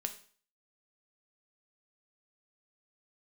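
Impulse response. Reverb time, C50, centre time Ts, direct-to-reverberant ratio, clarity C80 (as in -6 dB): 0.45 s, 13.0 dB, 8 ms, 6.0 dB, 17.0 dB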